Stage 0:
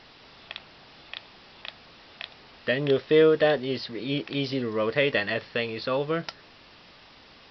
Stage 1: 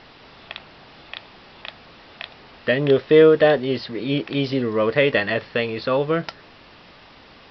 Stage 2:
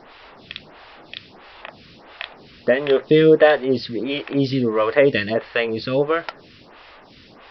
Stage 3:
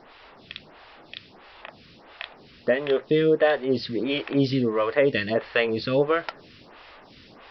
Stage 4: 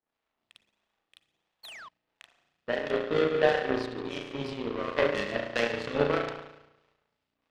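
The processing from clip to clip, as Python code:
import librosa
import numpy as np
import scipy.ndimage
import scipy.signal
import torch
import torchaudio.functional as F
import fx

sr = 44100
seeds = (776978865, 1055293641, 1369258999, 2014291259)

y1 = fx.high_shelf(x, sr, hz=4500.0, db=-10.5)
y1 = y1 * 10.0 ** (6.5 / 20.0)
y2 = fx.stagger_phaser(y1, sr, hz=1.5)
y2 = y2 * 10.0 ** (4.5 / 20.0)
y3 = fx.rider(y2, sr, range_db=3, speed_s=0.5)
y3 = y3 * 10.0 ** (-4.5 / 20.0)
y4 = fx.rev_spring(y3, sr, rt60_s=1.8, pass_ms=(34,), chirp_ms=45, drr_db=-3.0)
y4 = fx.spec_paint(y4, sr, seeds[0], shape='fall', start_s=1.63, length_s=0.26, low_hz=950.0, high_hz=4600.0, level_db=-25.0)
y4 = fx.power_curve(y4, sr, exponent=2.0)
y4 = y4 * 10.0 ** (-2.5 / 20.0)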